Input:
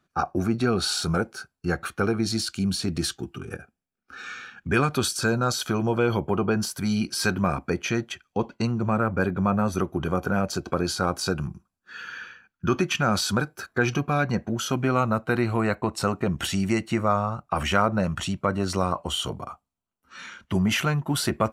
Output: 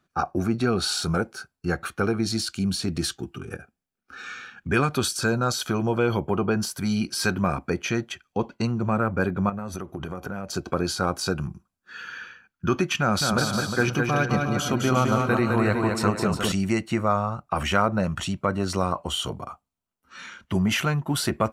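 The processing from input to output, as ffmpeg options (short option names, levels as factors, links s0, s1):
-filter_complex "[0:a]asettb=1/sr,asplit=3[s0][s1][s2];[s0]atrim=end=9.494[s3];[s1]atrim=start=9.49:end=10.54,asetpts=PTS-STARTPTS,afade=t=in:d=0.004:c=qsin,afade=t=out:st=1.046:d=0.004:c=qsin,acompressor=threshold=0.0398:ratio=10:attack=3.2:release=140:knee=1:detection=peak[s4];[s2]atrim=start=10.536[s5];[s3][s4]acrossfade=d=0.004:c1=hsin:c2=qsin[s6];[s6][s5]acrossfade=d=0.004:c1=qsin:c2=hsin,asettb=1/sr,asplit=3[s7][s8][s9];[s7]atrim=end=13.004[s10];[s8]atrim=start=13:end=16.52,asetpts=PTS-STARTPTS,afade=t=in:d=0.004:c=qsin,afade=t=out:st=3.516:d=0.004:c=qsin,aecho=1:1:210|357|459.9|531.9|582.4:0.631|0.398|0.251|0.158|0.1,atrim=end_sample=155232[s11];[s9]atrim=start=16.516[s12];[s10][s11]acrossfade=d=0.004:c1=hsin:c2=qsin[s13];[s13][s12]acrossfade=d=0.004:c1=qsin:c2=hsin"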